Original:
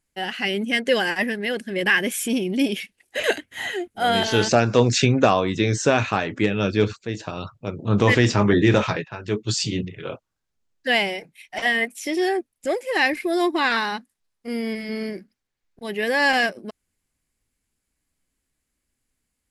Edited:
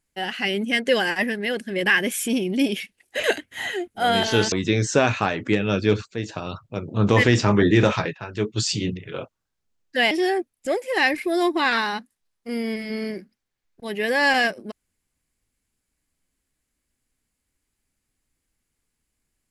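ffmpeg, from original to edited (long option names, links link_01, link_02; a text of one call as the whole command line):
ffmpeg -i in.wav -filter_complex "[0:a]asplit=3[link_01][link_02][link_03];[link_01]atrim=end=4.522[link_04];[link_02]atrim=start=5.428:end=11.022[link_05];[link_03]atrim=start=12.098[link_06];[link_04][link_05]acrossfade=duration=0.004:curve1=hsin:curve2=hsin[link_07];[link_07][link_06]acrossfade=duration=0.004:curve1=hsin:curve2=hsin" out.wav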